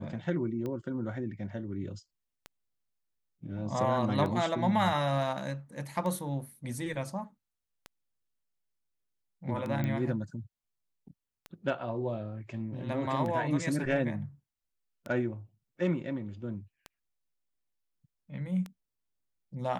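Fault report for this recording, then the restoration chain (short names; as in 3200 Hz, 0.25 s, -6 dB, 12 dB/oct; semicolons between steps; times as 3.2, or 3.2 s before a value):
tick 33 1/3 rpm -25 dBFS
9.84 pop -20 dBFS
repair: de-click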